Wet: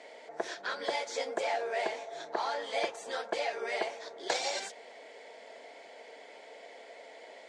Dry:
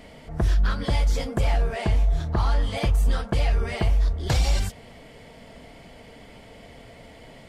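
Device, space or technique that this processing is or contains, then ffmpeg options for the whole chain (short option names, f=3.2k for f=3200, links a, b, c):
phone speaker on a table: -af "highpass=f=430:w=0.5412,highpass=f=430:w=1.3066,equalizer=f=1.2k:t=q:w=4:g=-9,equalizer=f=2.9k:t=q:w=4:g=-7,equalizer=f=5k:t=q:w=4:g=-4,lowpass=f=7.3k:w=0.5412,lowpass=f=7.3k:w=1.3066"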